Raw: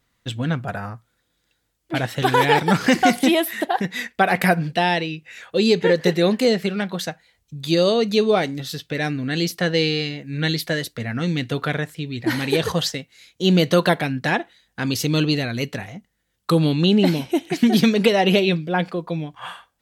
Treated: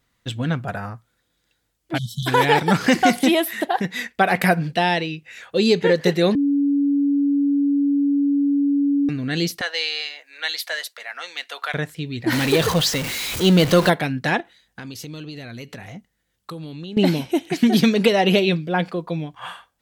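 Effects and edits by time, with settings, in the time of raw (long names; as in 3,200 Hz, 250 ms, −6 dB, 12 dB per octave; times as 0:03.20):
0:01.98–0:02.27: time-frequency box erased 220–3,000 Hz
0:06.35–0:09.09: beep over 283 Hz −15.5 dBFS
0:09.61–0:11.74: high-pass filter 700 Hz 24 dB per octave
0:12.32–0:13.90: converter with a step at zero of −21.5 dBFS
0:14.40–0:16.97: downward compressor, threshold −32 dBFS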